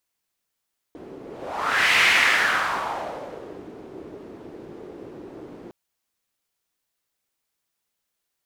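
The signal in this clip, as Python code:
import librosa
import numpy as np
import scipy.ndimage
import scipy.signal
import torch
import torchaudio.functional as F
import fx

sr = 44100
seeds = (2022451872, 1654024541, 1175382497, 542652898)

y = fx.whoosh(sr, seeds[0], length_s=4.76, peak_s=1.03, rise_s=0.8, fall_s=1.85, ends_hz=360.0, peak_hz=2200.0, q=2.7, swell_db=22.5)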